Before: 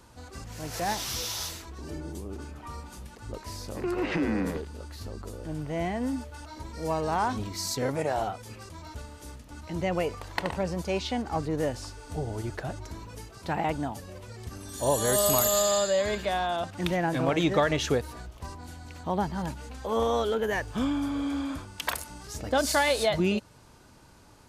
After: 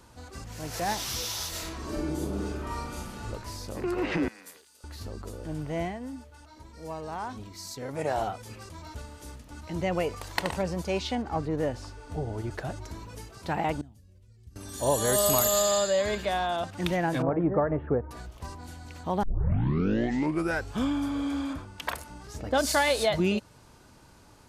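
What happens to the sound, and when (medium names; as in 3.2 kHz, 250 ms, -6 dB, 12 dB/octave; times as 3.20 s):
1.49–3.27 s: reverb throw, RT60 0.91 s, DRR -6.5 dB
4.28–4.84 s: differentiator
5.79–8.08 s: dip -8.5 dB, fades 0.20 s
10.16–10.62 s: treble shelf 4.1 kHz +8.5 dB
11.15–12.51 s: treble shelf 4.1 kHz -9.5 dB
13.81–14.56 s: amplifier tone stack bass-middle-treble 10-0-1
17.22–18.11 s: Bessel low-pass 940 Hz, order 6
19.23 s: tape start 1.54 s
21.53–22.54 s: treble shelf 3.2 kHz -8.5 dB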